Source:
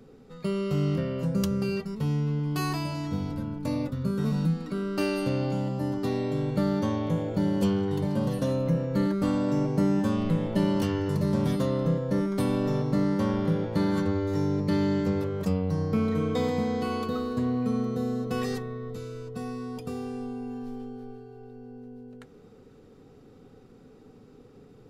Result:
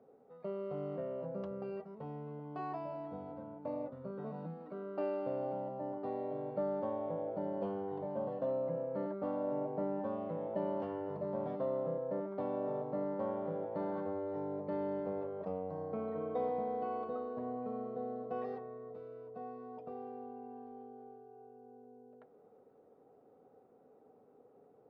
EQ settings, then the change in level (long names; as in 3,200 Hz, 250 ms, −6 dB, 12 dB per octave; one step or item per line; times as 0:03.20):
resonant band-pass 670 Hz, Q 3
high-frequency loss of the air 230 metres
+1.0 dB